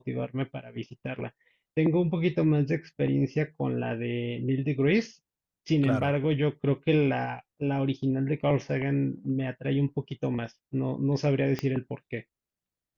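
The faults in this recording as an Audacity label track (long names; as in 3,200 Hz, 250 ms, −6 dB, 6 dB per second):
11.590000	11.590000	click −17 dBFS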